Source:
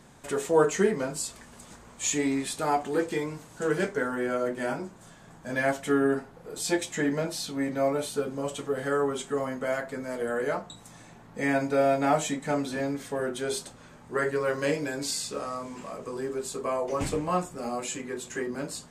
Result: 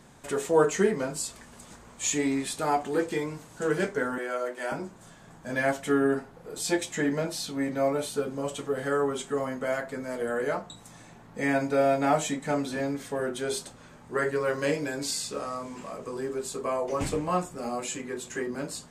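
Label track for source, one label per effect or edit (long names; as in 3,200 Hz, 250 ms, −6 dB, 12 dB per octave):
4.180000	4.720000	high-pass filter 510 Hz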